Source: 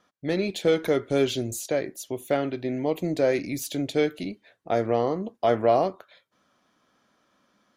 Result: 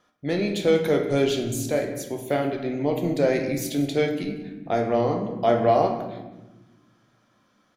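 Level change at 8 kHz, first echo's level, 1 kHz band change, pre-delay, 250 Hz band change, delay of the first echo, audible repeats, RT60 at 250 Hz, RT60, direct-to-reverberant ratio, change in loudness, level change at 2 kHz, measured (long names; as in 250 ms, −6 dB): +1.0 dB, −19.0 dB, +2.5 dB, 11 ms, +3.0 dB, 188 ms, 1, 2.0 s, 1.1 s, 3.0 dB, +2.0 dB, +2.0 dB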